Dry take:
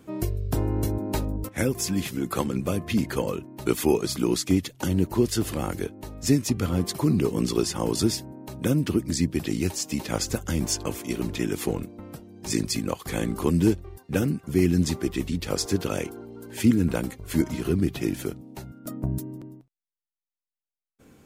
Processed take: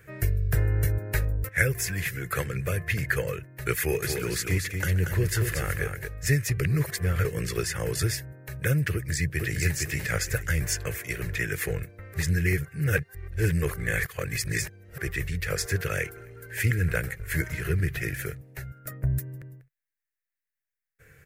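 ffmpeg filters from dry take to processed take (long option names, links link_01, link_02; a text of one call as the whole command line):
ffmpeg -i in.wav -filter_complex "[0:a]asettb=1/sr,asplit=3[link_01][link_02][link_03];[link_01]atrim=end=3.794[link_04];[link_02]atrim=start=3.79:end=6.08,asetpts=PTS-STARTPTS,afade=type=in:duration=0.004:curve=qsin,afade=type=out:start_time=2.286:duration=0.004:curve=qsin,aecho=1:1:129|233:0.106|0.501,atrim=end_sample=100989[link_05];[link_03]atrim=start=6.076[link_06];[link_04][link_05]acrossfade=duration=0.004:curve1=hsin:curve2=qsin[link_07];[link_07][link_06]acrossfade=duration=0.004:curve1=qsin:curve2=hsin,asplit=2[link_08][link_09];[link_09]afade=type=in:start_time=8.93:duration=0.01,afade=type=out:start_time=9.6:duration=0.01,aecho=0:1:460|920|1380|1840:0.707946|0.176986|0.0442466|0.0110617[link_10];[link_08][link_10]amix=inputs=2:normalize=0,asplit=3[link_11][link_12][link_13];[link_11]afade=type=out:start_time=16.15:duration=0.02[link_14];[link_12]asplit=4[link_15][link_16][link_17][link_18];[link_16]adelay=131,afreqshift=-38,volume=-22dB[link_19];[link_17]adelay=262,afreqshift=-76,volume=-28.4dB[link_20];[link_18]adelay=393,afreqshift=-114,volume=-34.8dB[link_21];[link_15][link_19][link_20][link_21]amix=inputs=4:normalize=0,afade=type=in:start_time=16.15:duration=0.02,afade=type=out:start_time=18.34:duration=0.02[link_22];[link_13]afade=type=in:start_time=18.34:duration=0.02[link_23];[link_14][link_22][link_23]amix=inputs=3:normalize=0,asplit=5[link_24][link_25][link_26][link_27][link_28];[link_24]atrim=end=6.602[link_29];[link_25]atrim=start=6.598:end=7.252,asetpts=PTS-STARTPTS,areverse[link_30];[link_26]atrim=start=7.248:end=12.142[link_31];[link_27]atrim=start=12.138:end=14.982,asetpts=PTS-STARTPTS,areverse[link_32];[link_28]atrim=start=14.978[link_33];[link_29][link_30]acrossfade=duration=0.004:curve1=hsin:curve2=hsin[link_34];[link_34][link_31]acrossfade=duration=0.004:curve1=hsin:curve2=hsin[link_35];[link_35][link_32]acrossfade=duration=0.004:curve1=hsin:curve2=hsin[link_36];[link_36][link_33]acrossfade=duration=0.004:curve1=hsin:curve2=hsin,firequalizer=gain_entry='entry(140,0);entry(230,-26);entry(450,-4);entry(900,-17);entry(1700,11);entry(3200,-9);entry(14000,1)':delay=0.05:min_phase=1,volume=3.5dB" out.wav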